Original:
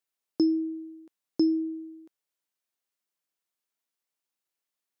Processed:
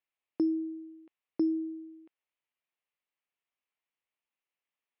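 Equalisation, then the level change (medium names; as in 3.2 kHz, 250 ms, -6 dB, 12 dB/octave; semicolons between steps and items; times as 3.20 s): Chebyshev low-pass 2.7 kHz, order 3; tilt shelf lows -5 dB, about 660 Hz; peaking EQ 1.5 kHz -5.5 dB 0.32 oct; -1.5 dB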